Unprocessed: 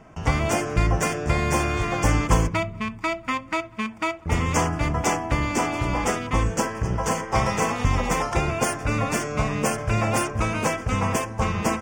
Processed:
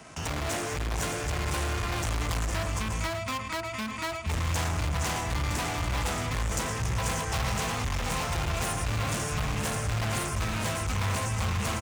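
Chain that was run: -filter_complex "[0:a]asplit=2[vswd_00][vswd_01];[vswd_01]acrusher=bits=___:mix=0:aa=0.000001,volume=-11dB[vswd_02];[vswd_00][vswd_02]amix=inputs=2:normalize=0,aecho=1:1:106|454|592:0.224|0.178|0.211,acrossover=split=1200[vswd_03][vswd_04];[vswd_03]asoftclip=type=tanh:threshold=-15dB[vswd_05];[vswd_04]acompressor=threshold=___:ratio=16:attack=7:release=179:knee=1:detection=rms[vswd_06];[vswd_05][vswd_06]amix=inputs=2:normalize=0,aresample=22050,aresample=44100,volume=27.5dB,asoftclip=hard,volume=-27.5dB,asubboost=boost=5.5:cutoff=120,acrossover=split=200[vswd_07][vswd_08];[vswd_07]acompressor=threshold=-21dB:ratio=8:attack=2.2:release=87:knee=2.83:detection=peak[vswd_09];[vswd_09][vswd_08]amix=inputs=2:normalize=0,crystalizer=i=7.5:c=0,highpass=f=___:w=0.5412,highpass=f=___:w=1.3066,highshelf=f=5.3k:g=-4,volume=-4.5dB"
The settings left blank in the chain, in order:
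7, -36dB, 47, 47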